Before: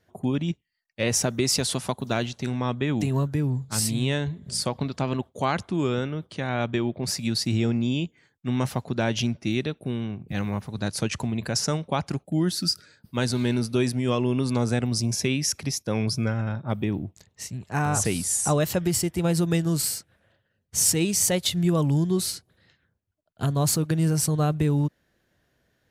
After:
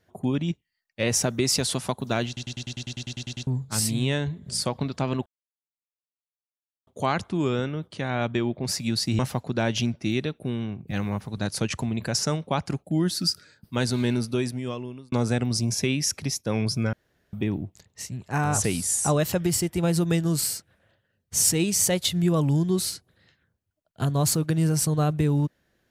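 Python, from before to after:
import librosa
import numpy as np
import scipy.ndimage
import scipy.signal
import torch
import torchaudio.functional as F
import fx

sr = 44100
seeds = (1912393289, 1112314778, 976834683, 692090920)

y = fx.edit(x, sr, fx.stutter_over(start_s=2.27, slice_s=0.1, count=12),
    fx.insert_silence(at_s=5.26, length_s=1.61),
    fx.cut(start_s=7.58, length_s=1.02),
    fx.fade_out_span(start_s=13.53, length_s=1.0),
    fx.room_tone_fill(start_s=16.34, length_s=0.4), tone=tone)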